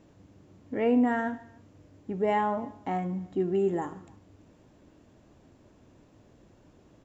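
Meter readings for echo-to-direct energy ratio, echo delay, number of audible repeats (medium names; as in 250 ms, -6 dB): -21.5 dB, 148 ms, 2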